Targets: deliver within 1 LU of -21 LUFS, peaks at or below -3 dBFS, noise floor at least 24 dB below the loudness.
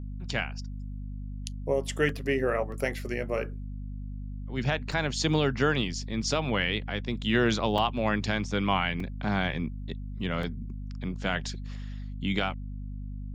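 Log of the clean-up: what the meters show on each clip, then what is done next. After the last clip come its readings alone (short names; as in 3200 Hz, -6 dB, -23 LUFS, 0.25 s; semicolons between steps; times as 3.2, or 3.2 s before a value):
dropouts 6; longest dropout 2.6 ms; hum 50 Hz; harmonics up to 250 Hz; hum level -34 dBFS; loudness -29.5 LUFS; peak -12.0 dBFS; loudness target -21.0 LUFS
-> interpolate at 2.09/2.72/4.92/7.78/9/10.43, 2.6 ms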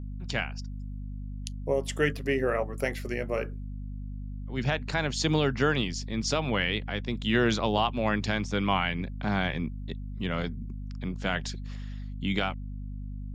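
dropouts 0; hum 50 Hz; harmonics up to 250 Hz; hum level -34 dBFS
-> notches 50/100/150/200/250 Hz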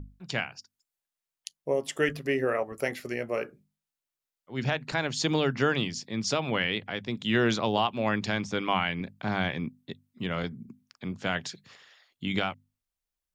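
hum none; loudness -29.5 LUFS; peak -12.0 dBFS; loudness target -21.0 LUFS
-> gain +8.5 dB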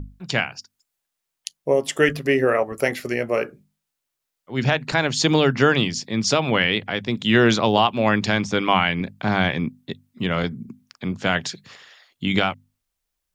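loudness -21.0 LUFS; peak -3.5 dBFS; noise floor -81 dBFS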